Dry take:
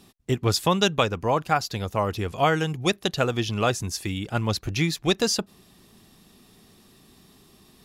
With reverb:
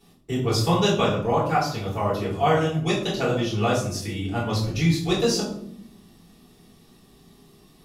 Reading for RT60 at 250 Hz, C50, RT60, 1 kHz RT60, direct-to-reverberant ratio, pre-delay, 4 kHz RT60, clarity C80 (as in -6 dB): 1.2 s, 4.0 dB, 0.70 s, 0.60 s, -9.0 dB, 3 ms, 0.40 s, 8.0 dB